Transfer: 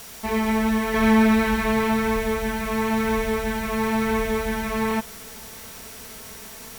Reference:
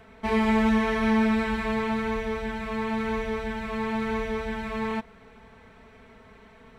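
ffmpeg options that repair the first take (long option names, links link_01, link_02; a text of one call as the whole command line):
ffmpeg -i in.wav -af "adeclick=threshold=4,bandreject=frequency=5700:width=30,afwtdn=0.0089,asetnsamples=nb_out_samples=441:pad=0,asendcmd='0.94 volume volume -5.5dB',volume=0dB" out.wav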